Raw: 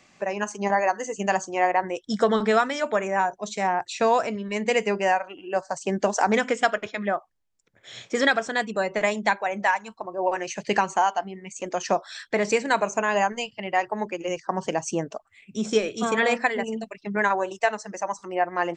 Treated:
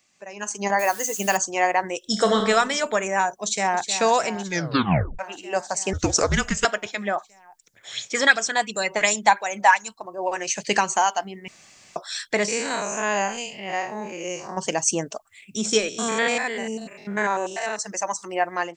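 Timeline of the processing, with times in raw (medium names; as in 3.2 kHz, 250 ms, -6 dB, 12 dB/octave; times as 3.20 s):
0.79–1.37 s: word length cut 8-bit, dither none
1.98–2.42 s: reverb throw, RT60 1.1 s, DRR 4 dB
3.38–3.88 s: echo throw 310 ms, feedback 80%, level -11 dB
4.44 s: tape stop 0.75 s
5.93–6.65 s: frequency shift -280 Hz
7.16–9.91 s: sweeping bell 2.8 Hz 800–7100 Hz +12 dB
11.48–11.96 s: room tone
12.48–14.57 s: spectral blur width 131 ms
15.89–17.79 s: spectrogram pixelated in time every 100 ms
whole clip: pre-emphasis filter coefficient 0.8; level rider gain up to 15.5 dB; trim -1.5 dB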